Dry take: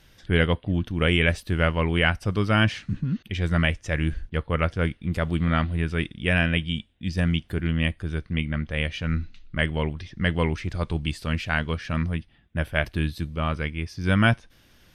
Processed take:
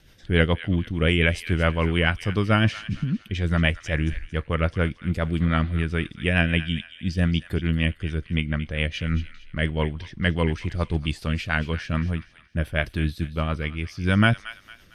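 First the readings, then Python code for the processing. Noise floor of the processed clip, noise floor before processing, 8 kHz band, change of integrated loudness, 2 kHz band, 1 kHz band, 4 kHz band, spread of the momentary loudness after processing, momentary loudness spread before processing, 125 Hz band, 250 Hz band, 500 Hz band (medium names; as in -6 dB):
-53 dBFS, -58 dBFS, no reading, +1.0 dB, 0.0 dB, -0.5 dB, +0.5 dB, 8 LU, 8 LU, +1.0 dB, +1.0 dB, +0.5 dB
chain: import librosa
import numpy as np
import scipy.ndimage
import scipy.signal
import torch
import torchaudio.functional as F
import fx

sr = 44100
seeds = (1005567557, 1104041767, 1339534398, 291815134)

y = fx.rotary(x, sr, hz=7.0)
y = fx.echo_wet_highpass(y, sr, ms=227, feedback_pct=36, hz=1500.0, wet_db=-12.0)
y = y * 10.0 ** (2.5 / 20.0)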